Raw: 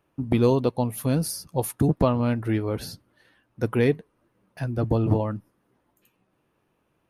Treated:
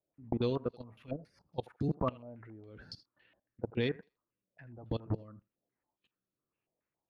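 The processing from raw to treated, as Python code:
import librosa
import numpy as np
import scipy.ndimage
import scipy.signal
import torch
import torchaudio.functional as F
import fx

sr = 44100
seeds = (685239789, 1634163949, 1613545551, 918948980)

y = fx.level_steps(x, sr, step_db=21)
y = fx.rotary_switch(y, sr, hz=6.3, then_hz=1.1, switch_at_s=1.49)
y = fx.echo_thinned(y, sr, ms=81, feedback_pct=18, hz=520.0, wet_db=-18.0)
y = fx.filter_held_lowpass(y, sr, hz=7.2, low_hz=640.0, high_hz=4800.0)
y = y * 10.0 ** (-8.0 / 20.0)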